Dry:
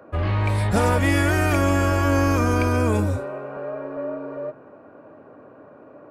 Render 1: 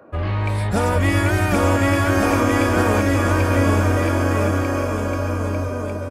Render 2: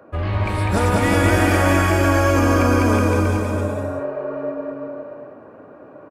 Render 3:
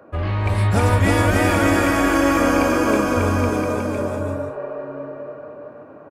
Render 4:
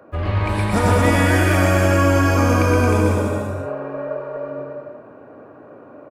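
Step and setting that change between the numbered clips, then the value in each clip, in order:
bouncing-ball echo, first gap: 790 ms, 200 ms, 320 ms, 120 ms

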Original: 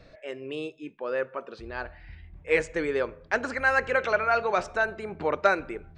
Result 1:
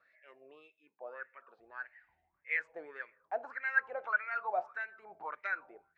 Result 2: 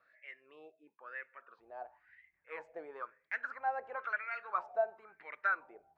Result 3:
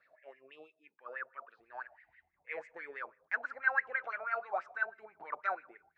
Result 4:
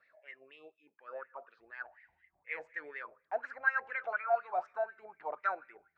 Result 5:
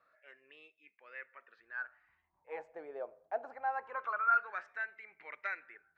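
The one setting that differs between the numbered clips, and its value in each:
wah-wah, rate: 1.7 Hz, 0.99 Hz, 6.1 Hz, 4.1 Hz, 0.24 Hz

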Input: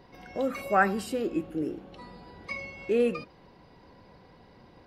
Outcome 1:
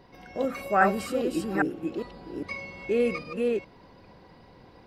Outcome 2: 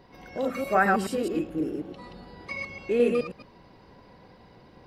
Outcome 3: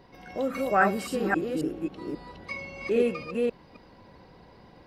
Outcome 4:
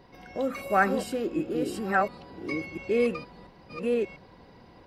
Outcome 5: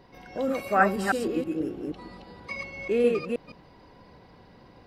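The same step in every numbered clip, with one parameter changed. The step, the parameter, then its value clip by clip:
chunks repeated in reverse, time: 405 ms, 107 ms, 269 ms, 694 ms, 160 ms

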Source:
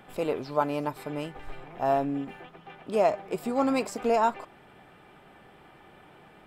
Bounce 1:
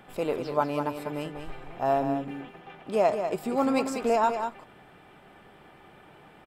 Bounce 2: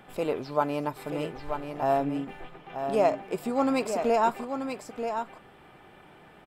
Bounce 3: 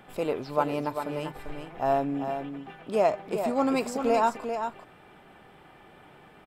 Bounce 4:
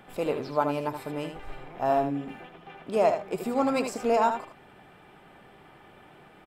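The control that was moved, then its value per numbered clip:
delay, time: 194 ms, 934 ms, 394 ms, 77 ms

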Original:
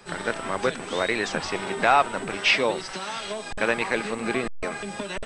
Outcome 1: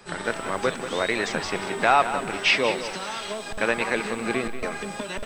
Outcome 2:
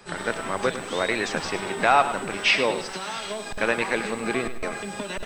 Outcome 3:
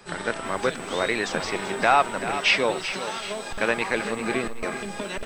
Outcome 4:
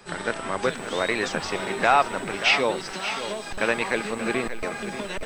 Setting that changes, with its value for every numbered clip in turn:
bit-crushed delay, time: 186 ms, 103 ms, 385 ms, 582 ms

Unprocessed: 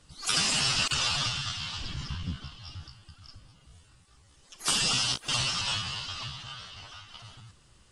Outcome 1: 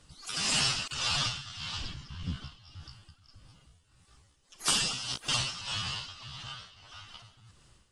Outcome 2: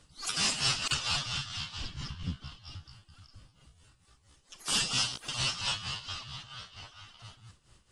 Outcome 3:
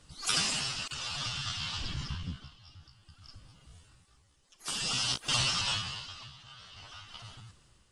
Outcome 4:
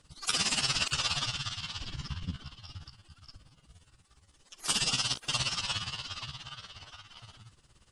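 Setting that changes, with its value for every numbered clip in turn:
tremolo, rate: 1.7 Hz, 4.4 Hz, 0.55 Hz, 17 Hz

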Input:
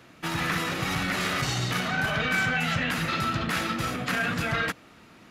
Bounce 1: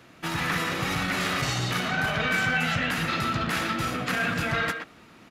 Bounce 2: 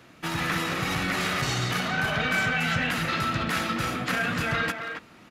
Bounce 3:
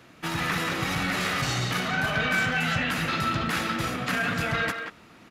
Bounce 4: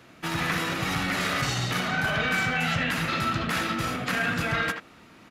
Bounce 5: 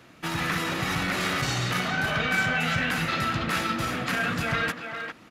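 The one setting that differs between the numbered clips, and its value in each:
speakerphone echo, time: 120 ms, 270 ms, 180 ms, 80 ms, 400 ms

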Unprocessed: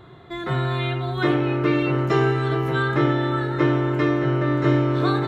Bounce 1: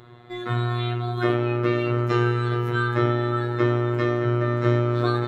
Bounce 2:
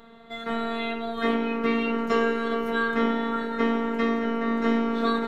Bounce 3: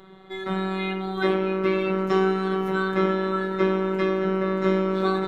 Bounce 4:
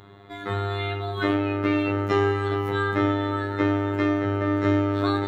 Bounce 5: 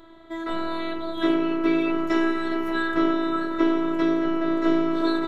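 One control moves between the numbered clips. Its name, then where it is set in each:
robot voice, frequency: 120 Hz, 230 Hz, 190 Hz, 100 Hz, 330 Hz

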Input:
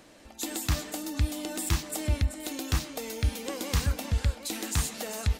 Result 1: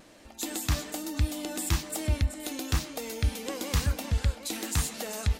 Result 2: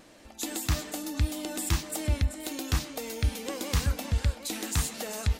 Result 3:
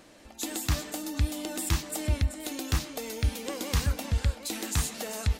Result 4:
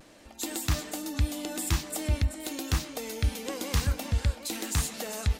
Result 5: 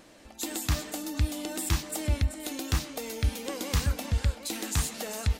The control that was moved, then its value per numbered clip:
vibrato, rate: 1.1 Hz, 1.7 Hz, 6.3 Hz, 0.51 Hz, 2.7 Hz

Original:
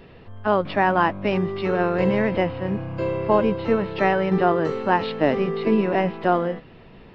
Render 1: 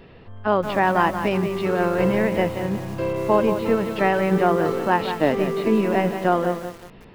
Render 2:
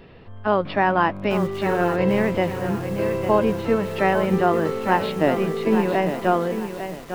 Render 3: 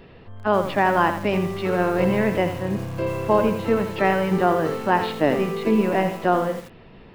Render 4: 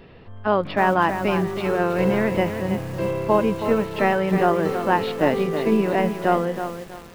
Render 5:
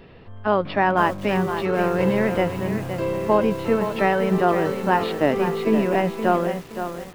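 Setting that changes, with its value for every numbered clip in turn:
bit-crushed delay, time: 179 ms, 851 ms, 83 ms, 321 ms, 518 ms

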